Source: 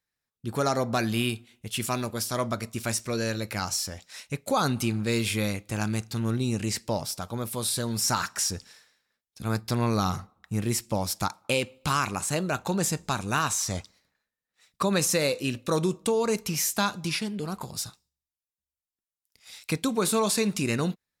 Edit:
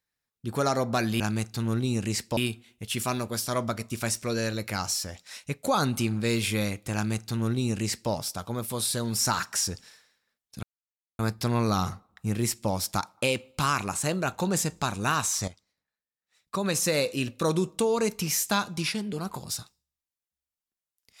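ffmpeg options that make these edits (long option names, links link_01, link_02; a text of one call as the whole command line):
ffmpeg -i in.wav -filter_complex "[0:a]asplit=5[link_01][link_02][link_03][link_04][link_05];[link_01]atrim=end=1.202[link_06];[link_02]atrim=start=5.768:end=6.942[link_07];[link_03]atrim=start=1.198:end=9.46,asetpts=PTS-STARTPTS,afade=type=out:start_time=8.258:duration=0.004:curve=hsin,apad=pad_dur=0.56[link_08];[link_04]atrim=start=9.46:end=13.75,asetpts=PTS-STARTPTS,afade=type=in:duration=0.004:curve=hsin,afade=type=out:start_time=4.286:duration=0.004:curve=hsin:silence=0.199526[link_09];[link_05]atrim=start=13.75,asetpts=PTS-STARTPTS,afade=type=in:duration=1.5:curve=qua:silence=0.199526[link_10];[link_06][link_07]acrossfade=duration=0.004:curve1=hsin:curve2=hsin[link_11];[link_08][link_09][link_10]concat=n=3:v=0:a=1[link_12];[link_11][link_12]acrossfade=duration=0.004:curve1=hsin:curve2=hsin" out.wav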